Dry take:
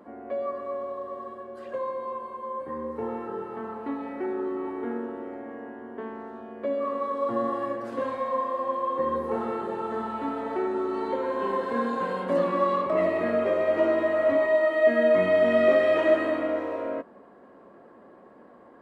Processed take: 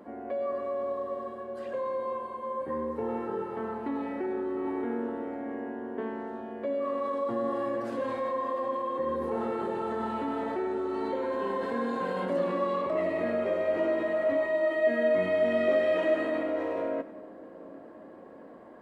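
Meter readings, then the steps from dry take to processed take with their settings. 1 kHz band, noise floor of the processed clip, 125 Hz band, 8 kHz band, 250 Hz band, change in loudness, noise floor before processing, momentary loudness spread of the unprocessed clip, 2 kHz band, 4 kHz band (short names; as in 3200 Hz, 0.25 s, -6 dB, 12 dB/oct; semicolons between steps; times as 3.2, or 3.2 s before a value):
-4.0 dB, -48 dBFS, -2.5 dB, n/a, -2.0 dB, -4.0 dB, -52 dBFS, 16 LU, -4.0 dB, -3.5 dB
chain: bell 1200 Hz -4 dB 0.57 oct; in parallel at -3 dB: negative-ratio compressor -33 dBFS, ratio -1; on the sum: split-band echo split 530 Hz, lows 0.774 s, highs 97 ms, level -14.5 dB; gain -5.5 dB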